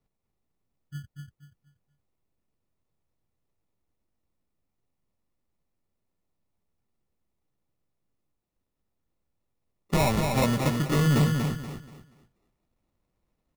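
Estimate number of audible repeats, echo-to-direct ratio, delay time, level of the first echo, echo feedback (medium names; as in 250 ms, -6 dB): 3, -4.0 dB, 239 ms, -4.5 dB, 29%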